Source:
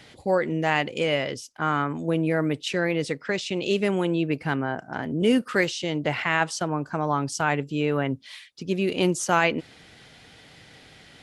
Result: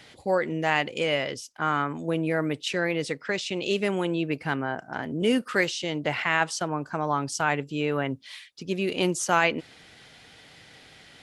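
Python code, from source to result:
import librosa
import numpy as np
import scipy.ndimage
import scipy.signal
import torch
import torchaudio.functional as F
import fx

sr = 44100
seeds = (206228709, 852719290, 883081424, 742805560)

y = fx.low_shelf(x, sr, hz=430.0, db=-4.5)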